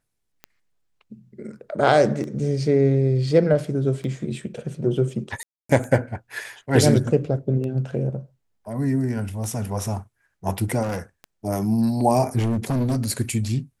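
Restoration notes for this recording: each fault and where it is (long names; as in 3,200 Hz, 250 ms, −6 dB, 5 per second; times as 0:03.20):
scratch tick 33 1/3 rpm −21 dBFS
0:05.43–0:05.69: drop-out 264 ms
0:10.82–0:11.00: clipping −23.5 dBFS
0:12.38–0:12.98: clipping −19 dBFS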